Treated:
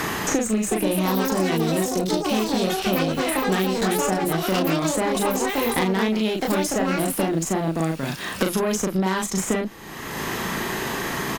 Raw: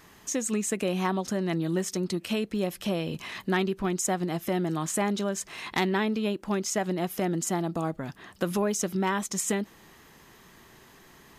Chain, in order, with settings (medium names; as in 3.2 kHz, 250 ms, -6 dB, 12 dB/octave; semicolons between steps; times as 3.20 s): Chebyshev shaper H 4 -17 dB, 5 -22 dB, 7 -37 dB, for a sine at -15.5 dBFS; 1.80–2.48 s: level held to a coarse grid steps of 9 dB; doubling 37 ms -2 dB; ever faster or slower copies 468 ms, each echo +6 st, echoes 2; three bands compressed up and down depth 100%